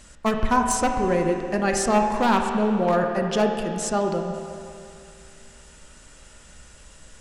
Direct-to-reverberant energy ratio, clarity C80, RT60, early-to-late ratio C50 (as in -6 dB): 2.5 dB, 5.0 dB, 2.5 s, 4.0 dB